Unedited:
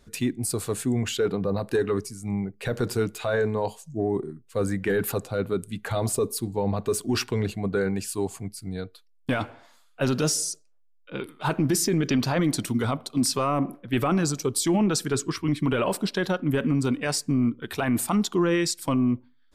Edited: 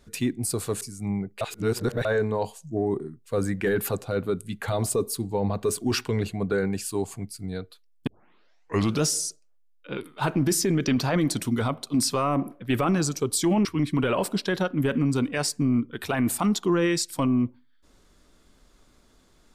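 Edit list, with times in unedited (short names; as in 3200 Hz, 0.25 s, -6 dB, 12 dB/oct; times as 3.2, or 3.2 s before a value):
0.81–2.04 cut
2.64–3.28 reverse
9.3 tape start 0.95 s
14.88–15.34 cut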